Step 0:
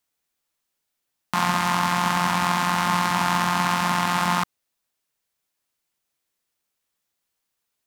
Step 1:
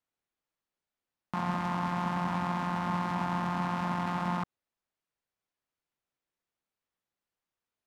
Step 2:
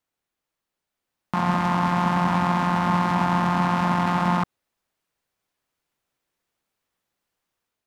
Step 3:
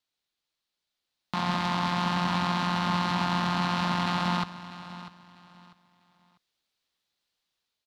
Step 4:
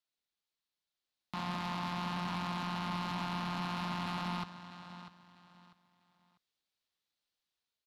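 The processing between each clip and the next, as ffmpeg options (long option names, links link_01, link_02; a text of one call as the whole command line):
ffmpeg -i in.wav -filter_complex "[0:a]lowpass=frequency=1700:poles=1,acrossover=split=760[link_01][link_02];[link_02]alimiter=limit=-24dB:level=0:latency=1:release=48[link_03];[link_01][link_03]amix=inputs=2:normalize=0,volume=-5dB" out.wav
ffmpeg -i in.wav -af "dynaudnorm=framelen=760:gausssize=3:maxgain=4.5dB,volume=5.5dB" out.wav
ffmpeg -i in.wav -af "equalizer=frequency=4000:width_type=o:width=1.2:gain=14.5,aecho=1:1:646|1292|1938:0.178|0.048|0.013,volume=-7dB" out.wav
ffmpeg -i in.wav -af "asoftclip=type=tanh:threshold=-23dB,volume=-7.5dB" out.wav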